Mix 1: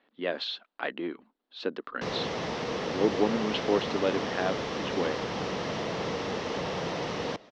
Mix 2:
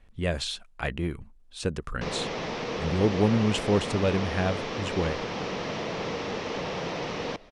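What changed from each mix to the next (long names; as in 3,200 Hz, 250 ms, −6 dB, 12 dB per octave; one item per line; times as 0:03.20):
speech: remove elliptic band-pass filter 260–4,100 Hz, stop band 40 dB
master: add parametric band 2,400 Hz +4.5 dB 0.22 octaves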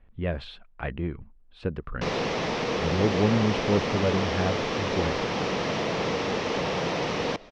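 speech: add high-frequency loss of the air 410 metres
background +4.5 dB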